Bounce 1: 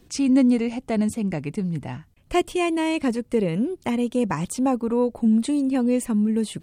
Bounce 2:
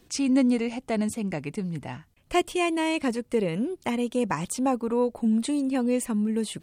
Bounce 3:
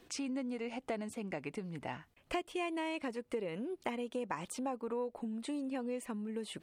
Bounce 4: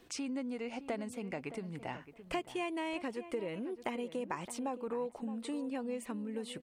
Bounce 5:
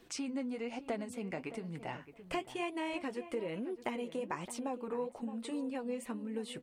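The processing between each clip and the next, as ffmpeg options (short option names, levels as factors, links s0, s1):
-af "lowshelf=f=350:g=-6.5"
-af "acompressor=threshold=0.02:ratio=6,bass=f=250:g=-10,treble=f=4000:g=-8,volume=1.12"
-filter_complex "[0:a]asplit=2[s0][s1];[s1]adelay=617,lowpass=f=1800:p=1,volume=0.237,asplit=2[s2][s3];[s3]adelay=617,lowpass=f=1800:p=1,volume=0.16[s4];[s0][s2][s4]amix=inputs=3:normalize=0"
-af "flanger=delay=4.4:depth=7.7:regen=-53:speed=1.1:shape=triangular,volume=1.58"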